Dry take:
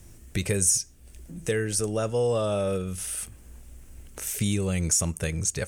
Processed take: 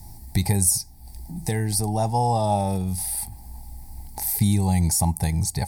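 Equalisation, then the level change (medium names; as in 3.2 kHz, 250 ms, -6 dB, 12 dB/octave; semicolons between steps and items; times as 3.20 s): FFT filter 140 Hz 0 dB, 250 Hz -3 dB, 540 Hz -16 dB, 830 Hz +15 dB, 1.3 kHz -22 dB, 2 kHz -6 dB, 2.9 kHz -18 dB, 4.6 kHz +6 dB, 6.5 kHz -10 dB, 12 kHz +5 dB; dynamic bell 5.9 kHz, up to -6 dB, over -43 dBFS, Q 1.1; +7.5 dB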